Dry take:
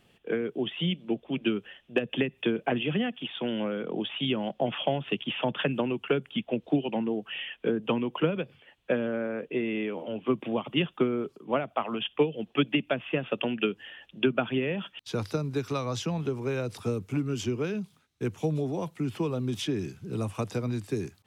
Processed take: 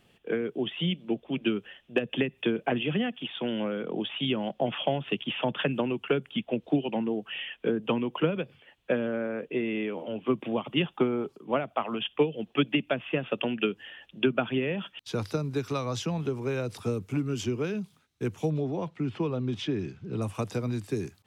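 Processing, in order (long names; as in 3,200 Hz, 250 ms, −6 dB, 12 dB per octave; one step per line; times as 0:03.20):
0:10.84–0:11.34: parametric band 830 Hz +10 dB 0.32 octaves
0:18.50–0:20.22: low-pass filter 3,900 Hz 12 dB per octave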